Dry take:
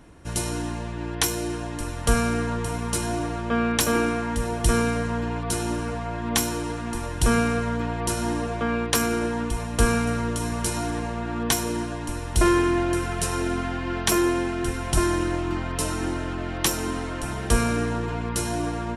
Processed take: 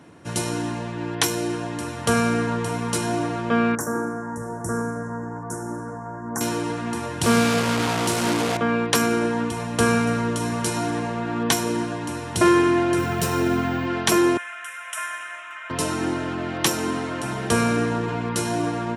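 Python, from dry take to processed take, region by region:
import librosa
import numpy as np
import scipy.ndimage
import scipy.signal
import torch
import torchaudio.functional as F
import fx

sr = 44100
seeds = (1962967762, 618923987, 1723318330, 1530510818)

y = fx.chain(x, sr, fx.cheby1_bandstop(low_hz=1600.0, high_hz=6300.0, order=3),
    fx.comb_fb(f0_hz=55.0, decay_s=0.61, harmonics='all', damping=0.0, mix_pct=60), at=(3.75, 6.41))
y = fx.chain(y, sr, fx.delta_mod(bps=64000, step_db=-19.5),
    fx.peak_eq(hz=1700.0, db=-3.0, octaves=0.36), at=(7.23, 8.57))
y = fx.chain(y, sr, fx.low_shelf(hz=210.0, db=6.5),
    fx.resample_bad(factor=2, down='filtered', up='hold'), at=(12.98, 13.86))
y = fx.chain(y, sr, fx.ellip_highpass(hz=650.0, order=4, stop_db=40),
    fx.fixed_phaser(hz=1900.0, stages=4), at=(14.37, 15.7))
y = scipy.signal.sosfilt(scipy.signal.butter(4, 110.0, 'highpass', fs=sr, output='sos'), y)
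y = fx.high_shelf(y, sr, hz=8000.0, db=-6.5)
y = y * librosa.db_to_amplitude(3.5)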